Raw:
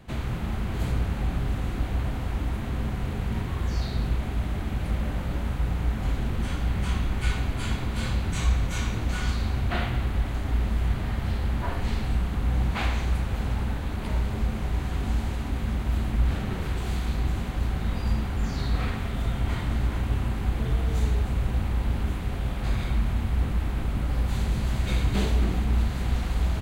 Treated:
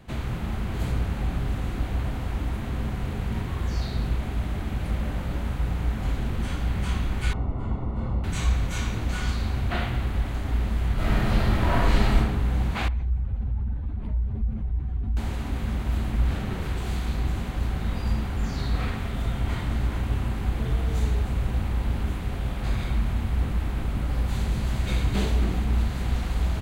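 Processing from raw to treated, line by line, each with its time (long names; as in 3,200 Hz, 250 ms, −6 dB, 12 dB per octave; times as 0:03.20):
0:07.33–0:08.24: Savitzky-Golay smoothing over 65 samples
0:10.94–0:12.17: thrown reverb, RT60 1.1 s, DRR −8 dB
0:12.88–0:15.17: expanding power law on the bin magnitudes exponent 1.7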